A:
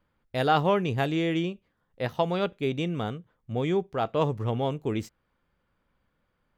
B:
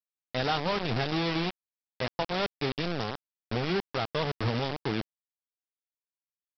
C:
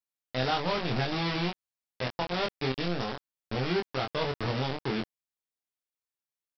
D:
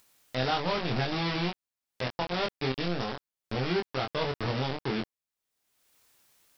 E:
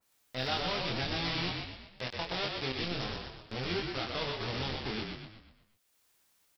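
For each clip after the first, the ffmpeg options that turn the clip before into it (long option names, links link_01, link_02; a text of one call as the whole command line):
ffmpeg -i in.wav -filter_complex "[0:a]acrossover=split=120|3000[link_01][link_02][link_03];[link_02]acompressor=threshold=-30dB:ratio=2.5[link_04];[link_01][link_04][link_03]amix=inputs=3:normalize=0,aresample=11025,acrusher=bits=4:mix=0:aa=0.000001,aresample=44100" out.wav
ffmpeg -i in.wav -filter_complex "[0:a]asplit=2[link_01][link_02];[link_02]adelay=23,volume=-3dB[link_03];[link_01][link_03]amix=inputs=2:normalize=0,volume=-2dB" out.wav
ffmpeg -i in.wav -af "acompressor=mode=upward:threshold=-43dB:ratio=2.5" out.wav
ffmpeg -i in.wav -filter_complex "[0:a]asplit=7[link_01][link_02][link_03][link_04][link_05][link_06][link_07];[link_02]adelay=122,afreqshift=-37,volume=-4dB[link_08];[link_03]adelay=244,afreqshift=-74,volume=-10dB[link_09];[link_04]adelay=366,afreqshift=-111,volume=-16dB[link_10];[link_05]adelay=488,afreqshift=-148,volume=-22.1dB[link_11];[link_06]adelay=610,afreqshift=-185,volume=-28.1dB[link_12];[link_07]adelay=732,afreqshift=-222,volume=-34.1dB[link_13];[link_01][link_08][link_09][link_10][link_11][link_12][link_13]amix=inputs=7:normalize=0,adynamicequalizer=threshold=0.00501:dfrequency=1900:dqfactor=0.7:tfrequency=1900:tqfactor=0.7:attack=5:release=100:ratio=0.375:range=3.5:mode=boostabove:tftype=highshelf,volume=-7.5dB" out.wav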